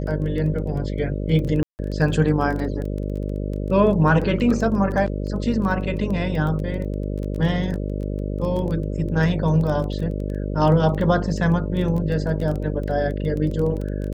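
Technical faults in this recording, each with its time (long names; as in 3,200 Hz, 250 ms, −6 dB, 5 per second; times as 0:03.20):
mains buzz 50 Hz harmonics 12 −26 dBFS
surface crackle 12 per second −27 dBFS
0:01.63–0:01.79: drop-out 159 ms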